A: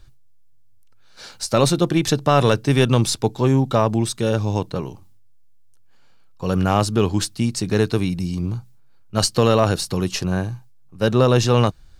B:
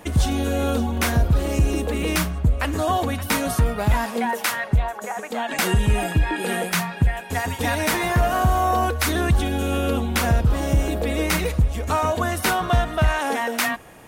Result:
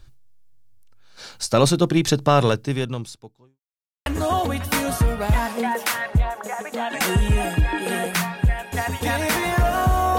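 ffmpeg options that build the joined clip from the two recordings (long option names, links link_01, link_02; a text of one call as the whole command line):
ffmpeg -i cue0.wav -i cue1.wav -filter_complex "[0:a]apad=whole_dur=10.18,atrim=end=10.18,asplit=2[link_01][link_02];[link_01]atrim=end=3.6,asetpts=PTS-STARTPTS,afade=type=out:start_time=2.31:duration=1.29:curve=qua[link_03];[link_02]atrim=start=3.6:end=4.06,asetpts=PTS-STARTPTS,volume=0[link_04];[1:a]atrim=start=2.64:end=8.76,asetpts=PTS-STARTPTS,afade=type=in:duration=0.004:curve=hsin[link_05];[link_03][link_04][link_05]concat=n=3:v=0:a=1" out.wav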